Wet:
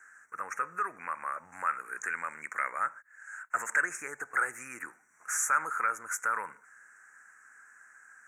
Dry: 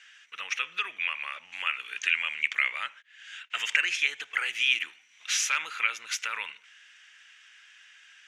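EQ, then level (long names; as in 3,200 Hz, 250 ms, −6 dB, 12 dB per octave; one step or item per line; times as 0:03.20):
elliptic band-stop filter 1,500–7,700 Hz, stop band 80 dB
low-shelf EQ 210 Hz +6 dB
+7.0 dB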